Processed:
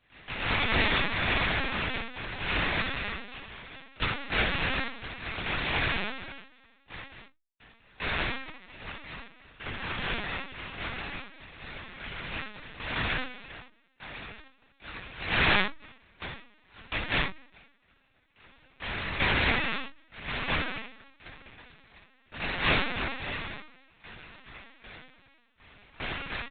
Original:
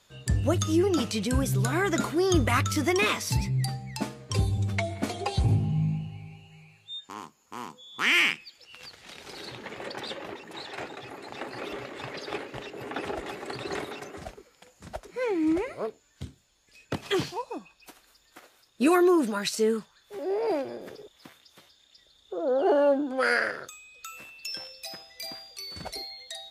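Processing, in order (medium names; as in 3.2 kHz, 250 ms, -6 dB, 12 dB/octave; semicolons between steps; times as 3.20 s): elliptic band-stop 400–1100 Hz; bass shelf 430 Hz -2 dB; de-hum 128.7 Hz, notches 30; compression 12:1, threshold -25 dBFS, peak gain reduction 8 dB; saturation -22.5 dBFS, distortion -20 dB; noise-vocoded speech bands 1; half-wave rectifier; random-step tremolo 2.5 Hz, depth 100%; distance through air 71 m; early reflections 25 ms -5 dB, 69 ms -5 dB; reverberation RT60 0.20 s, pre-delay 3 ms, DRR -0.5 dB; LPC vocoder at 8 kHz pitch kept; trim +6.5 dB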